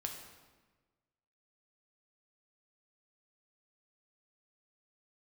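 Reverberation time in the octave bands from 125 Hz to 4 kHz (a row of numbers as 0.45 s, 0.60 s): 1.6 s, 1.5 s, 1.4 s, 1.3 s, 1.2 s, 1.0 s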